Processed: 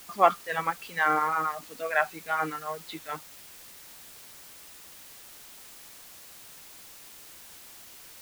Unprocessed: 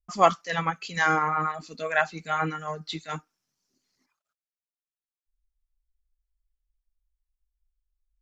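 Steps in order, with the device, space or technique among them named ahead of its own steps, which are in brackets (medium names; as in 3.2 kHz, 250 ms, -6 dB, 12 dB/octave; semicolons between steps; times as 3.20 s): wax cylinder (band-pass 290–2700 Hz; wow and flutter; white noise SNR 16 dB); trim -1 dB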